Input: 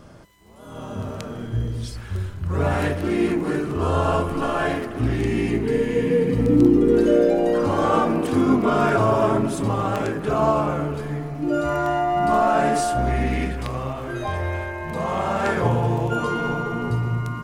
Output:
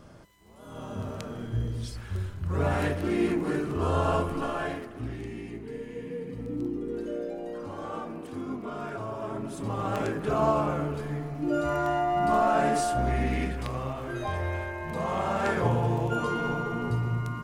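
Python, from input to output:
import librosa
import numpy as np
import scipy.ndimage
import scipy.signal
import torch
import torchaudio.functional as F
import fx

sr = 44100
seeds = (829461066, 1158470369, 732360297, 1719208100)

y = fx.gain(x, sr, db=fx.line((4.23, -5.0), (5.43, -17.0), (9.18, -17.0), (9.99, -5.0)))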